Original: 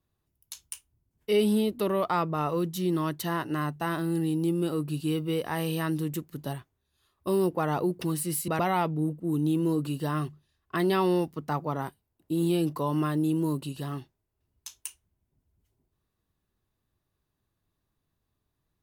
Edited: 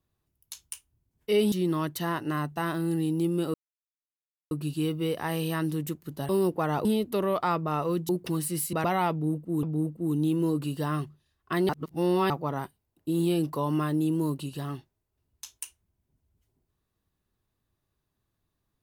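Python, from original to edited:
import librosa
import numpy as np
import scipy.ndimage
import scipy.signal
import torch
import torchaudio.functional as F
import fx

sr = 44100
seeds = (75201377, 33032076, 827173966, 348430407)

y = fx.edit(x, sr, fx.move(start_s=1.52, length_s=1.24, to_s=7.84),
    fx.insert_silence(at_s=4.78, length_s=0.97),
    fx.cut(start_s=6.56, length_s=0.72),
    fx.repeat(start_s=8.86, length_s=0.52, count=2),
    fx.reverse_span(start_s=10.92, length_s=0.61), tone=tone)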